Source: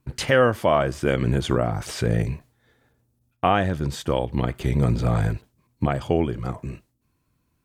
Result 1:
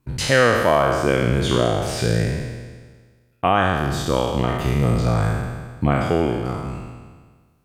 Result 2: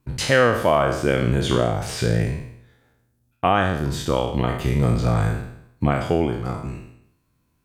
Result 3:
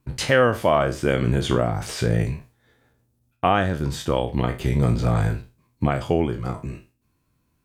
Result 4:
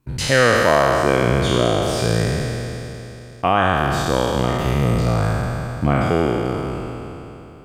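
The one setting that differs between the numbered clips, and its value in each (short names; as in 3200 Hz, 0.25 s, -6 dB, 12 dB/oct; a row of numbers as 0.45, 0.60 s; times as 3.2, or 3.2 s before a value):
spectral trails, RT60: 1.53, 0.73, 0.3, 3.2 s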